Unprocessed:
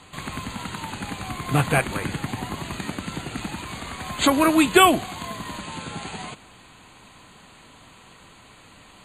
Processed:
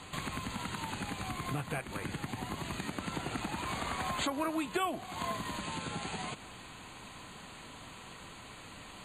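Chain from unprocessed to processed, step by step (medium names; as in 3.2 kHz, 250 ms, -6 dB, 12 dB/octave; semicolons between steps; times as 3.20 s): compression 6:1, threshold -35 dBFS, peak gain reduction 22.5 dB; 2.90–5.37 s: dynamic bell 830 Hz, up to +5 dB, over -47 dBFS, Q 0.7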